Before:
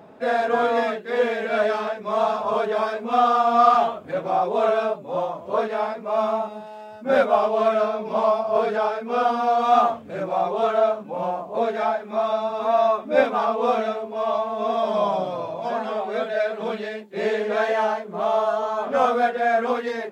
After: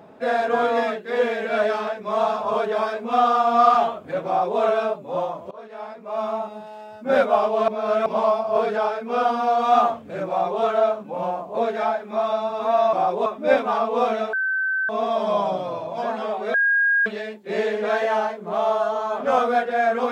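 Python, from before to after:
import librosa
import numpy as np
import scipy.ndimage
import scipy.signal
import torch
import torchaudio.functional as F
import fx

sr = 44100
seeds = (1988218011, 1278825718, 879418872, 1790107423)

y = fx.edit(x, sr, fx.duplicate(start_s=4.27, length_s=0.33, to_s=12.93),
    fx.fade_in_from(start_s=5.51, length_s=1.17, floor_db=-23.5),
    fx.reverse_span(start_s=7.68, length_s=0.38),
    fx.bleep(start_s=14.0, length_s=0.56, hz=1540.0, db=-20.0),
    fx.bleep(start_s=16.21, length_s=0.52, hz=1630.0, db=-15.5), tone=tone)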